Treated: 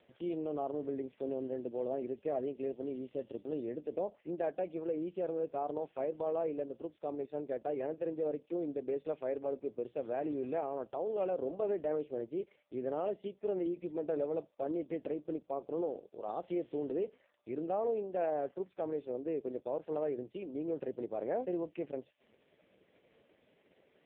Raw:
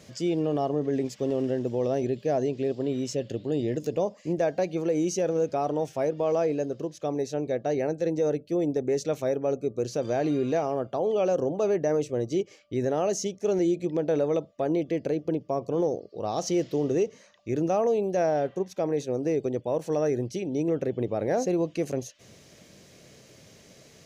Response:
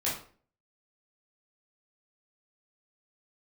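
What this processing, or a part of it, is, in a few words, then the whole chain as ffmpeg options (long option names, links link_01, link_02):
telephone: -af "highpass=260,lowpass=3300,volume=-8dB" -ar 8000 -c:a libopencore_amrnb -b:a 4750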